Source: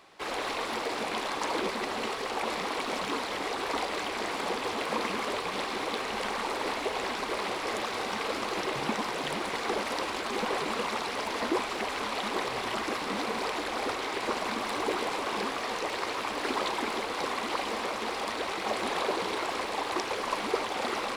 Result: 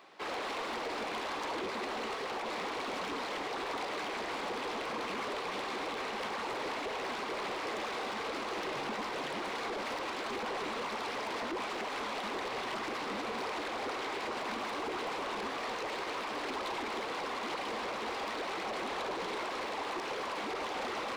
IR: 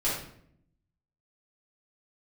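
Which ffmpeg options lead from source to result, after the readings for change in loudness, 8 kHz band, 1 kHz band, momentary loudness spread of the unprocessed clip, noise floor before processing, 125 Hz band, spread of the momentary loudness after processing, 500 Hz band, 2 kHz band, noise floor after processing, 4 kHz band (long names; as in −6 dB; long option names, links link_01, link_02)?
−5.0 dB, −8.0 dB, −5.0 dB, 2 LU, −35 dBFS, −6.5 dB, 0 LU, −5.0 dB, −4.5 dB, −39 dBFS, −6.0 dB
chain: -af "highpass=190,equalizer=frequency=11000:width_type=o:width=1.4:gain=-10,alimiter=limit=-23.5dB:level=0:latency=1:release=45,asoftclip=type=tanh:threshold=-32.5dB"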